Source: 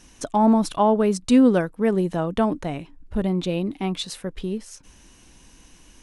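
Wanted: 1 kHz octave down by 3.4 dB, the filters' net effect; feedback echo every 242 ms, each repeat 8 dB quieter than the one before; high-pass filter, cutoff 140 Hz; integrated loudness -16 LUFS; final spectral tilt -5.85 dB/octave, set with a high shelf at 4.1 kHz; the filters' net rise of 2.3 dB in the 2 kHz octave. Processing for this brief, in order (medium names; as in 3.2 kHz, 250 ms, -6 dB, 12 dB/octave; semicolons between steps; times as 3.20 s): high-pass 140 Hz; peaking EQ 1 kHz -5 dB; peaking EQ 2 kHz +6.5 dB; treble shelf 4.1 kHz -6.5 dB; feedback delay 242 ms, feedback 40%, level -8 dB; trim +6.5 dB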